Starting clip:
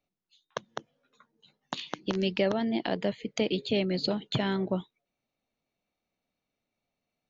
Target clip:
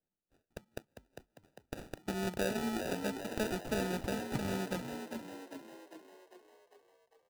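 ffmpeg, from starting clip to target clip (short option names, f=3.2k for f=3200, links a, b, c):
-filter_complex "[0:a]acrusher=samples=41:mix=1:aa=0.000001,asplit=8[a][b][c][d][e][f][g][h];[b]adelay=400,afreqshift=45,volume=-7dB[i];[c]adelay=800,afreqshift=90,volume=-12.2dB[j];[d]adelay=1200,afreqshift=135,volume=-17.4dB[k];[e]adelay=1600,afreqshift=180,volume=-22.6dB[l];[f]adelay=2000,afreqshift=225,volume=-27.8dB[m];[g]adelay=2400,afreqshift=270,volume=-33dB[n];[h]adelay=2800,afreqshift=315,volume=-38.2dB[o];[a][i][j][k][l][m][n][o]amix=inputs=8:normalize=0,volume=-7.5dB"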